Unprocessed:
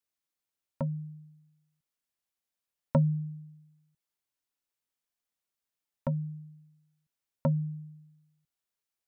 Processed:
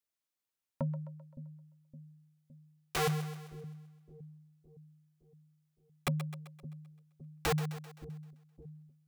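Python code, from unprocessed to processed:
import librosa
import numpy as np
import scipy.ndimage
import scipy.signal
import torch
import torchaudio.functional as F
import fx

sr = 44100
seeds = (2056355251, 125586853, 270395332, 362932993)

y = (np.mod(10.0 ** (23.5 / 20.0) * x + 1.0, 2.0) - 1.0) / 10.0 ** (23.5 / 20.0)
y = fx.echo_split(y, sr, split_hz=390.0, low_ms=564, high_ms=130, feedback_pct=52, wet_db=-11.5)
y = y * librosa.db_to_amplitude(-2.5)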